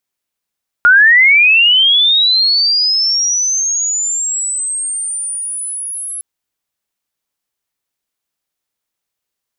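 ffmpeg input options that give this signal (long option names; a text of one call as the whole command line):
ffmpeg -f lavfi -i "aevalsrc='pow(10,(-3.5-17.5*t/5.36)/20)*sin(2*PI*(1400*t+9600*t*t/(2*5.36)))':duration=5.36:sample_rate=44100" out.wav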